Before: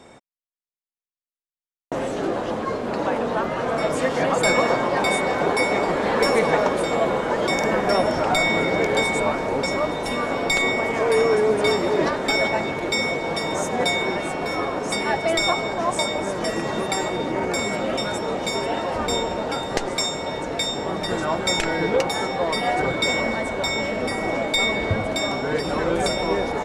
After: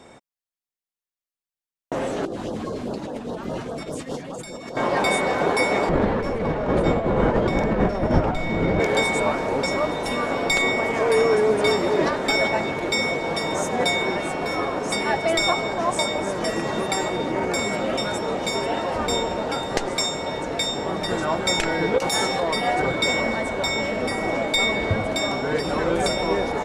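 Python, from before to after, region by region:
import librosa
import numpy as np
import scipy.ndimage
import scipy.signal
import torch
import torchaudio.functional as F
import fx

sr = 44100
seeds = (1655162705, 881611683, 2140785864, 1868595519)

y = fx.chain(x, sr, fx.peak_eq(hz=1400.0, db=-9.0, octaves=2.3),
    fx.over_compress(threshold_db=-30.0, ratio=-1.0),
    fx.filter_lfo_notch(shape='sine', hz=4.9, low_hz=450.0, high_hz=2400.0, q=1.1), at=(2.25, 4.77))
y = fx.chain(y, sr, fx.clip_hard(threshold_db=-17.0),
    fx.over_compress(threshold_db=-24.0, ratio=-0.5),
    fx.riaa(side='playback'), at=(5.89, 8.8))
y = fx.chain(y, sr, fx.high_shelf(hz=4000.0, db=11.0),
    fx.over_compress(threshold_db=-22.0, ratio=-0.5), at=(21.98, 22.43))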